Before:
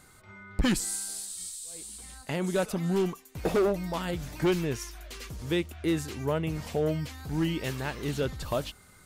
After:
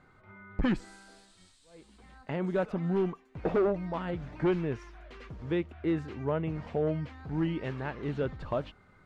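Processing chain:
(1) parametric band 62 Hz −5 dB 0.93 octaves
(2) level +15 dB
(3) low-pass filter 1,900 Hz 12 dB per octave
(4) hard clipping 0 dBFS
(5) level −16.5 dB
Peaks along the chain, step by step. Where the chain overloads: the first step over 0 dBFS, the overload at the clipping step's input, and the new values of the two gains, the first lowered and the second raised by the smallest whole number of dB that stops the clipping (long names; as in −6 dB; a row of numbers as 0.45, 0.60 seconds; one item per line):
−19.5, −4.5, −4.0, −4.0, −20.5 dBFS
no step passes full scale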